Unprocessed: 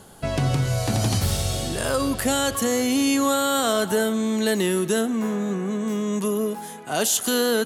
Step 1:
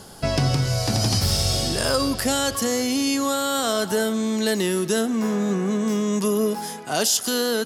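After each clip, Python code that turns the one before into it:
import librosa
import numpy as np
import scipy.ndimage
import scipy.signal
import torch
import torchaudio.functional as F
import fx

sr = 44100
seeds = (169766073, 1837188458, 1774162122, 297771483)

y = fx.rider(x, sr, range_db=5, speed_s=0.5)
y = fx.peak_eq(y, sr, hz=5100.0, db=12.5, octaves=0.32)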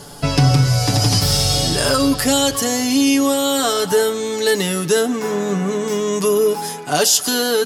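y = x + 0.73 * np.pad(x, (int(6.9 * sr / 1000.0), 0))[:len(x)]
y = y * librosa.db_to_amplitude(4.0)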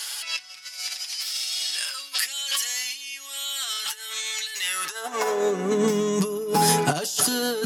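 y = fx.over_compress(x, sr, threshold_db=-26.0, ratio=-1.0)
y = fx.filter_sweep_highpass(y, sr, from_hz=2300.0, to_hz=130.0, start_s=4.56, end_s=6.08, q=1.7)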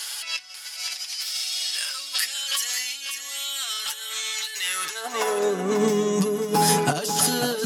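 y = x + 10.0 ** (-8.0 / 20.0) * np.pad(x, (int(542 * sr / 1000.0), 0))[:len(x)]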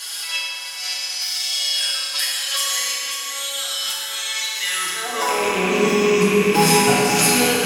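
y = fx.rattle_buzz(x, sr, strikes_db=-35.0, level_db=-14.0)
y = fx.rev_fdn(y, sr, rt60_s=2.8, lf_ratio=1.0, hf_ratio=0.6, size_ms=18.0, drr_db=-6.5)
y = y * librosa.db_to_amplitude(-1.5)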